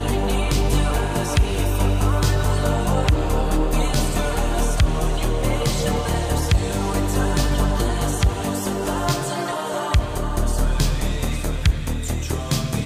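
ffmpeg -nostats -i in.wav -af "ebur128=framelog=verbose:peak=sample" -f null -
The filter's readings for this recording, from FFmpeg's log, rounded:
Integrated loudness:
  I:         -22.0 LUFS
  Threshold: -32.0 LUFS
Loudness range:
  LRA:         2.6 LU
  Threshold: -41.9 LUFS
  LRA low:   -23.4 LUFS
  LRA high:  -20.8 LUFS
Sample peak:
  Peak:       -6.8 dBFS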